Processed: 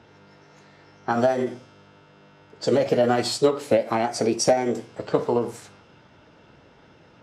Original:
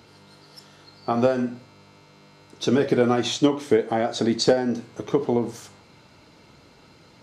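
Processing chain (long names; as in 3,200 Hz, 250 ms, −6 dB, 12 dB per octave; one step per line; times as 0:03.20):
low-pass that shuts in the quiet parts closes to 2,200 Hz, open at −20.5 dBFS
formants moved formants +4 semitones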